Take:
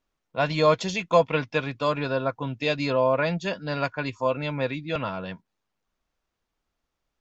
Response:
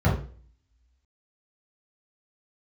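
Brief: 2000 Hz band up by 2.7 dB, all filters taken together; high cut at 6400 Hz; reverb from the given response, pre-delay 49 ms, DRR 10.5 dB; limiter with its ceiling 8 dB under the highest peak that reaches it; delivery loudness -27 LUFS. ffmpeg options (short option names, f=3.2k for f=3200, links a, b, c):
-filter_complex "[0:a]lowpass=6.4k,equalizer=f=2k:t=o:g=4,alimiter=limit=-14dB:level=0:latency=1,asplit=2[a][b];[1:a]atrim=start_sample=2205,adelay=49[c];[b][c]afir=irnorm=-1:irlink=0,volume=-25dB[d];[a][d]amix=inputs=2:normalize=0,volume=-2dB"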